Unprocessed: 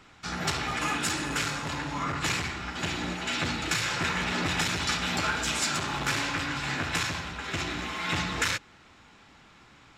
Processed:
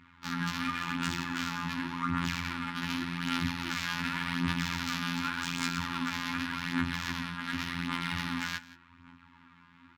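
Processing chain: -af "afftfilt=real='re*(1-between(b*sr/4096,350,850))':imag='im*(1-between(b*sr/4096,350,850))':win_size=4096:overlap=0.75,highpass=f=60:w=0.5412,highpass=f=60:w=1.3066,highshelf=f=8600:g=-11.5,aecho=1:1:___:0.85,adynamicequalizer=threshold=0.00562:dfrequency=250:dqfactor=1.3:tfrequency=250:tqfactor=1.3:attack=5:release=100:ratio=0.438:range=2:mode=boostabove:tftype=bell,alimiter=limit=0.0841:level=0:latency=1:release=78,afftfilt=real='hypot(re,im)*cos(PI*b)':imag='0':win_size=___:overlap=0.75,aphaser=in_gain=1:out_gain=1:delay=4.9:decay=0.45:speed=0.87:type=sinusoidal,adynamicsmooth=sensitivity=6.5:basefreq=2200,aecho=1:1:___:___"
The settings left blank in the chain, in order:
7.4, 2048, 173, 0.112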